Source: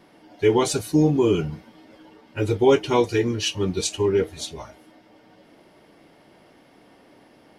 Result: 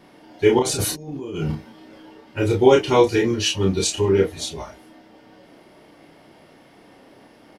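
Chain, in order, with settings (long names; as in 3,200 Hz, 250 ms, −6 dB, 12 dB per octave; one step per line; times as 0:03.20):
0:00.59–0:01.52: compressor whose output falls as the input rises −31 dBFS, ratio −1
double-tracking delay 31 ms −3 dB
level +2 dB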